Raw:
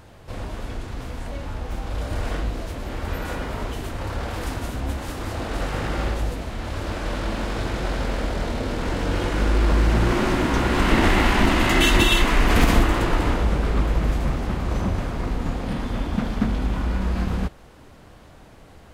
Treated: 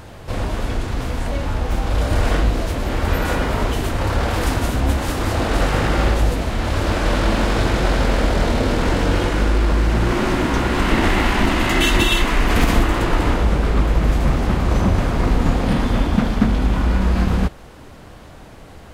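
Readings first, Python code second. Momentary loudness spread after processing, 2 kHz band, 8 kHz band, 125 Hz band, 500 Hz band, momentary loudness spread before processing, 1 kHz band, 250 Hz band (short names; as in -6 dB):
6 LU, +3.0 dB, +3.5 dB, +5.5 dB, +5.0 dB, 14 LU, +4.5 dB, +4.5 dB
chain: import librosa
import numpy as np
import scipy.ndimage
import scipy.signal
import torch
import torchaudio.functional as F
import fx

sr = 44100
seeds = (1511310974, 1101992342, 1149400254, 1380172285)

y = fx.rider(x, sr, range_db=4, speed_s=0.5)
y = y * 10.0 ** (5.0 / 20.0)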